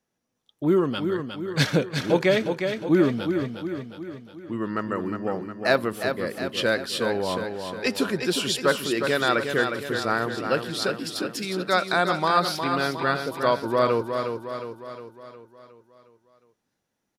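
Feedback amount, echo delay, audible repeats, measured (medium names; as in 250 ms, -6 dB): 53%, 360 ms, 6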